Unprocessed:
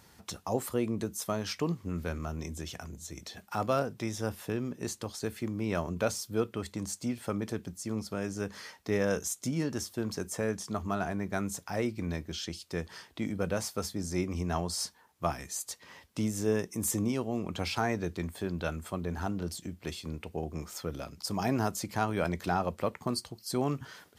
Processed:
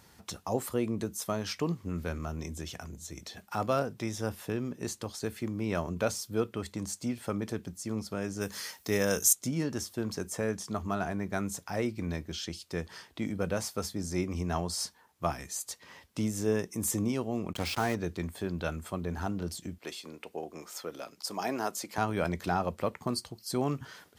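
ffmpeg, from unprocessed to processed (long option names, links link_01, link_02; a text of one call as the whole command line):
ffmpeg -i in.wav -filter_complex "[0:a]asettb=1/sr,asplit=3[link_01][link_02][link_03];[link_01]atrim=end=8.414[link_04];[link_02]atrim=start=8.41:end=9.33,asetpts=PTS-STARTPTS,afade=type=in:duration=0.004:curve=qsin,afade=type=out:start_time=0.916:duration=0.004:curve=qsin,aemphasis=mode=production:type=75kf[link_05];[link_03]atrim=start=9.326[link_06];[link_04][link_05]acrossfade=duration=0.004:curve1=hsin:curve2=qsin[link_07];[link_07][link_06]acrossfade=duration=0.004:curve1=qsin:curve2=hsin,asplit=3[link_08][link_09][link_10];[link_08]afade=type=out:start_time=17.52:duration=0.02[link_11];[link_09]acrusher=bits=5:mix=0:aa=0.5,afade=type=in:start_time=17.52:duration=0.02,afade=type=out:start_time=17.94:duration=0.02[link_12];[link_10]afade=type=in:start_time=17.94:duration=0.02[link_13];[link_11][link_12][link_13]amix=inputs=3:normalize=0,asettb=1/sr,asplit=3[link_14][link_15][link_16];[link_14]atrim=end=19.784[link_17];[link_15]atrim=start=19.78:end=21.98,asetpts=PTS-STARTPTS,afade=type=in:duration=0.004:curve=qsin,afade=type=out:start_time=2.196:duration=0.004:curve=qsin,highpass=340[link_18];[link_16]atrim=start=21.976[link_19];[link_17][link_18]acrossfade=duration=0.004:curve1=hsin:curve2=qsin[link_20];[link_20][link_19]acrossfade=duration=0.004:curve1=qsin:curve2=hsin" out.wav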